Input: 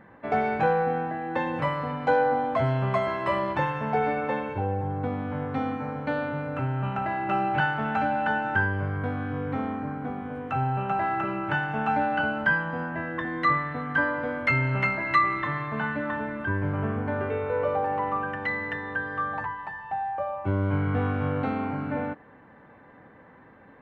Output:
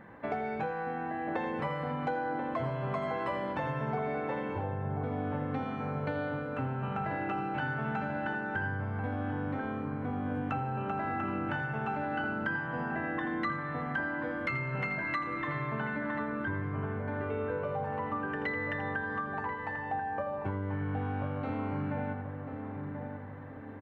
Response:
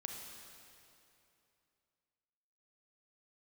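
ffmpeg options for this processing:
-filter_complex "[0:a]asplit=2[a][b];[b]aecho=0:1:82:0.355[c];[a][c]amix=inputs=2:normalize=0,acompressor=threshold=-32dB:ratio=6,asplit=2[d][e];[e]adelay=1036,lowpass=f=870:p=1,volume=-5dB,asplit=2[f][g];[g]adelay=1036,lowpass=f=870:p=1,volume=0.53,asplit=2[h][i];[i]adelay=1036,lowpass=f=870:p=1,volume=0.53,asplit=2[j][k];[k]adelay=1036,lowpass=f=870:p=1,volume=0.53,asplit=2[l][m];[m]adelay=1036,lowpass=f=870:p=1,volume=0.53,asplit=2[n][o];[o]adelay=1036,lowpass=f=870:p=1,volume=0.53,asplit=2[p][q];[q]adelay=1036,lowpass=f=870:p=1,volume=0.53[r];[f][h][j][l][n][p][r]amix=inputs=7:normalize=0[s];[d][s]amix=inputs=2:normalize=0"

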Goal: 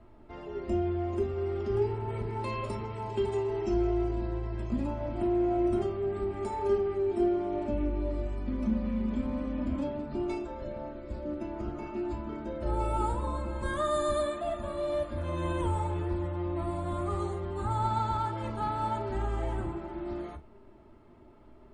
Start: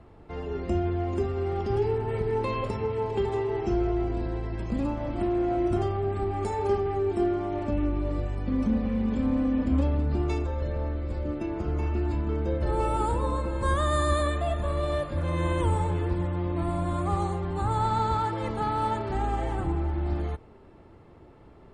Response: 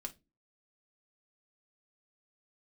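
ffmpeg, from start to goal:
-filter_complex "[0:a]asettb=1/sr,asplit=3[a][b][c];[a]atrim=end=2.394[d];[b]atrim=start=2.39:end=4.15,asetpts=PTS-STARTPTS,afade=t=in:d=0.004:c=qsin,afade=t=out:st=1.756:d=0.004:c=qsin,aemphasis=mode=production:type=cd[e];[c]atrim=start=4.146[f];[d][e]acrossfade=d=0.004:c1=hsin:c2=qsin[g];[g][f]acrossfade=d=0.004:c1=qsin:c2=hsin[h];[1:a]atrim=start_sample=2205,atrim=end_sample=3528[i];[h][i]afir=irnorm=-1:irlink=0,volume=-2dB"

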